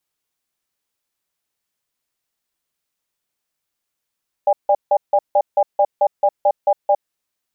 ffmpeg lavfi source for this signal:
-f lavfi -i "aevalsrc='0.211*(sin(2*PI*590*t)+sin(2*PI*808*t))*clip(min(mod(t,0.22),0.06-mod(t,0.22))/0.005,0,1)':d=2.62:s=44100"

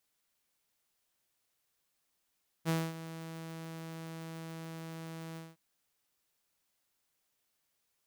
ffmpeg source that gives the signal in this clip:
-f lavfi -i "aevalsrc='0.0562*(2*mod(163*t,1)-1)':d=2.912:s=44100,afade=t=in:d=0.041,afade=t=out:st=0.041:d=0.236:silence=0.188,afade=t=out:st=2.71:d=0.202"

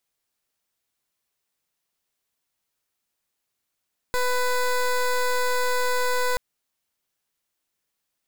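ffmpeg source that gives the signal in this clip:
-f lavfi -i "aevalsrc='0.075*(2*lt(mod(498*t,1),0.17)-1)':d=2.23:s=44100"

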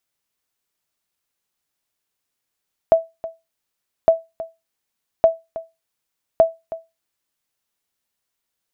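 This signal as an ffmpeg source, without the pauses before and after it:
-f lavfi -i "aevalsrc='0.631*(sin(2*PI*656*mod(t,1.16))*exp(-6.91*mod(t,1.16)/0.22)+0.15*sin(2*PI*656*max(mod(t,1.16)-0.32,0))*exp(-6.91*max(mod(t,1.16)-0.32,0)/0.22))':d=4.64:s=44100"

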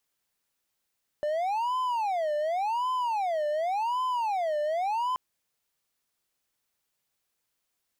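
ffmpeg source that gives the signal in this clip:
-f lavfi -i "aevalsrc='0.0668*(1-4*abs(mod((807*t-213/(2*PI*0.89)*sin(2*PI*0.89*t))+0.25,1)-0.5))':d=3.93:s=44100"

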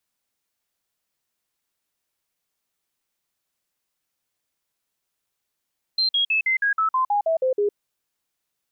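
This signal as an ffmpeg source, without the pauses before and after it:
-f lavfi -i "aevalsrc='0.133*clip(min(mod(t,0.16),0.11-mod(t,0.16))/0.005,0,1)*sin(2*PI*4140*pow(2,-floor(t/0.16)/3)*mod(t,0.16))':d=1.76:s=44100"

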